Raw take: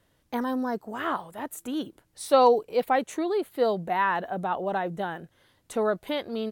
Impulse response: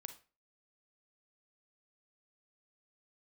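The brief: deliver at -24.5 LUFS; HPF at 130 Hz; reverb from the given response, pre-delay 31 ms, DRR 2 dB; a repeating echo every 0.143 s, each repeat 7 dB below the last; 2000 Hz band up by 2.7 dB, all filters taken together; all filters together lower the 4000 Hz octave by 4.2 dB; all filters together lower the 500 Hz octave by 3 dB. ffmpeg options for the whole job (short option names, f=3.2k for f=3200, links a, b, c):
-filter_complex "[0:a]highpass=130,equalizer=f=500:t=o:g=-3.5,equalizer=f=2k:t=o:g=5,equalizer=f=4k:t=o:g=-7.5,aecho=1:1:143|286|429|572|715:0.447|0.201|0.0905|0.0407|0.0183,asplit=2[a][b];[1:a]atrim=start_sample=2205,adelay=31[c];[b][c]afir=irnorm=-1:irlink=0,volume=3dB[d];[a][d]amix=inputs=2:normalize=0,volume=1dB"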